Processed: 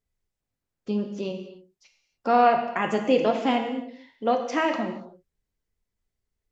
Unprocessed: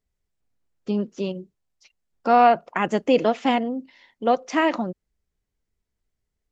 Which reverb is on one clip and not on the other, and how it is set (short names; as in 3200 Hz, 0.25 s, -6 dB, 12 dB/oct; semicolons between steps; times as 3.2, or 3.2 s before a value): non-linear reverb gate 0.32 s falling, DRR 3.5 dB; gain -3.5 dB